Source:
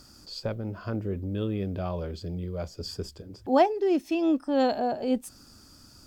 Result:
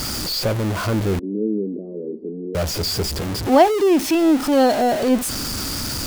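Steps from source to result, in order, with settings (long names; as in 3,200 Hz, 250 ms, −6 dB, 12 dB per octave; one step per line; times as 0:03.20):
converter with a step at zero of −27 dBFS
0:01.19–0:02.55: elliptic band-pass filter 210–450 Hz, stop band 70 dB
level +6.5 dB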